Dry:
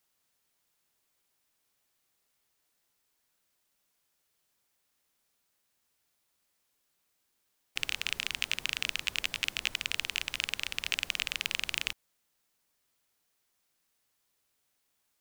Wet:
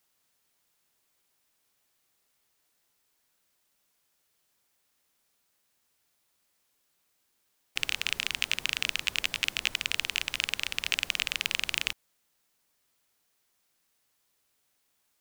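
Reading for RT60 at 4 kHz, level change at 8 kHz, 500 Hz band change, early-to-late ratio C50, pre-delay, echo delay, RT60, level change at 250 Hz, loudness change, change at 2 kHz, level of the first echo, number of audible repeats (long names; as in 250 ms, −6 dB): no reverb audible, +3.0 dB, +3.0 dB, no reverb audible, no reverb audible, no echo audible, no reverb audible, +2.5 dB, +3.0 dB, +3.0 dB, no echo audible, no echo audible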